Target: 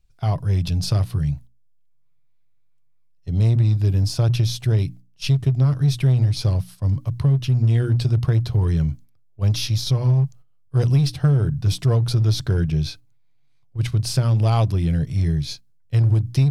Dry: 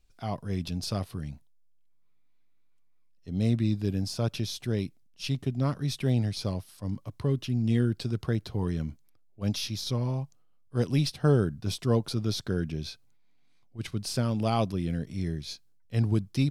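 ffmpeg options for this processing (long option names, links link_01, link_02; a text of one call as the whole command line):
ffmpeg -i in.wav -filter_complex "[0:a]lowshelf=frequency=170:width_type=q:width=3:gain=6.5,agate=range=-9dB:threshold=-43dB:ratio=16:detection=peak,bandreject=frequency=60:width_type=h:width=6,bandreject=frequency=120:width_type=h:width=6,bandreject=frequency=180:width_type=h:width=6,bandreject=frequency=240:width_type=h:width=6,bandreject=frequency=300:width_type=h:width=6,asplit=2[link_01][link_02];[link_02]volume=21.5dB,asoftclip=hard,volume=-21.5dB,volume=-4.5dB[link_03];[link_01][link_03]amix=inputs=2:normalize=0,acompressor=threshold=-17dB:ratio=5,volume=3dB" out.wav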